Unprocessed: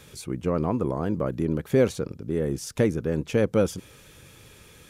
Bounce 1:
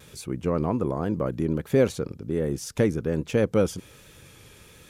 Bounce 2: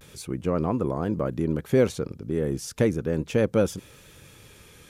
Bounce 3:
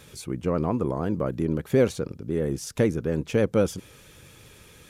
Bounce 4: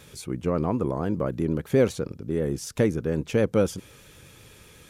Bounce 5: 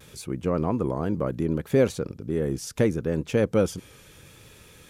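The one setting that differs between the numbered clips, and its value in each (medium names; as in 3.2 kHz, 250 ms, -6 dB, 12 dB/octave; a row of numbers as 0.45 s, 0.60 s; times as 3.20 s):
vibrato, rate: 1.3 Hz, 0.35 Hz, 13 Hz, 8 Hz, 0.71 Hz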